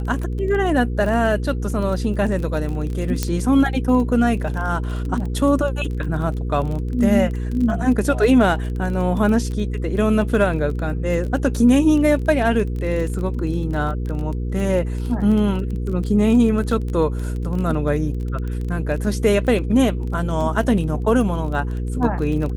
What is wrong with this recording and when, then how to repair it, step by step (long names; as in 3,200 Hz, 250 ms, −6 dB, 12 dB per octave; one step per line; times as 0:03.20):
surface crackle 22 per second −26 dBFS
mains hum 60 Hz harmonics 8 −24 dBFS
0:03.23: click −6 dBFS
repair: click removal
hum removal 60 Hz, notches 8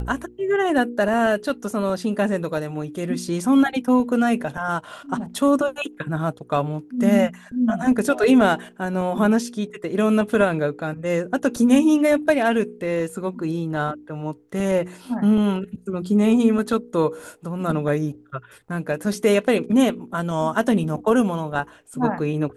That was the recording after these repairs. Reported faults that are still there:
none of them is left